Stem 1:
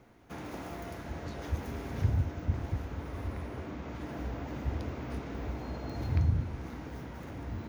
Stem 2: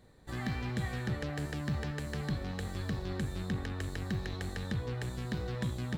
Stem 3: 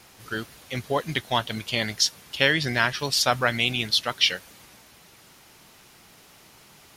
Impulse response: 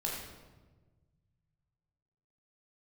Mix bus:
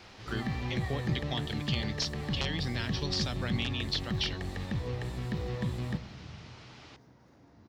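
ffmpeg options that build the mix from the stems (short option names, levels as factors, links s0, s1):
-filter_complex "[0:a]highpass=130,highshelf=f=4000:t=q:w=1.5:g=9.5,adelay=50,volume=0.15,asplit=2[s0][s1];[s1]volume=0.126[s2];[1:a]acrossover=split=3500[s3][s4];[s4]acompressor=threshold=0.00158:ratio=4:attack=1:release=60[s5];[s3][s5]amix=inputs=2:normalize=0,bandreject=f=1500:w=5,volume=1,asplit=2[s6][s7];[s7]volume=0.188[s8];[2:a]acrossover=split=320|3000[s9][s10][s11];[s10]acompressor=threshold=0.00631:ratio=2.5[s12];[s9][s12][s11]amix=inputs=3:normalize=0,aeval=exprs='(mod(4.22*val(0)+1,2)-1)/4.22':c=same,volume=1.12[s13];[s0][s13]amix=inputs=2:normalize=0,lowpass=f=5200:w=0.5412,lowpass=f=5200:w=1.3066,acompressor=threshold=0.0224:ratio=3,volume=1[s14];[3:a]atrim=start_sample=2205[s15];[s2][s8]amix=inputs=2:normalize=0[s16];[s16][s15]afir=irnorm=-1:irlink=0[s17];[s6][s14][s17]amix=inputs=3:normalize=0"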